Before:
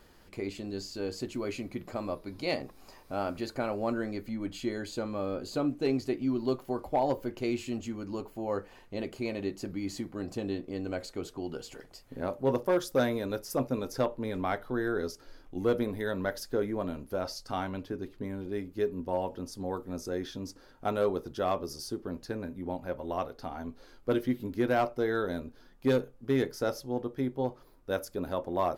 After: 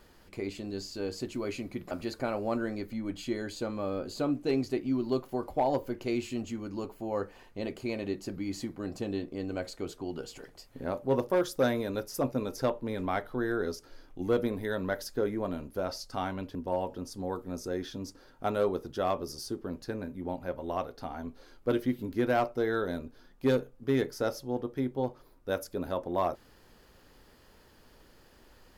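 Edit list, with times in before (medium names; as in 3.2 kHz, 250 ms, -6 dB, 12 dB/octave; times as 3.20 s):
1.91–3.27 s: delete
17.91–18.96 s: delete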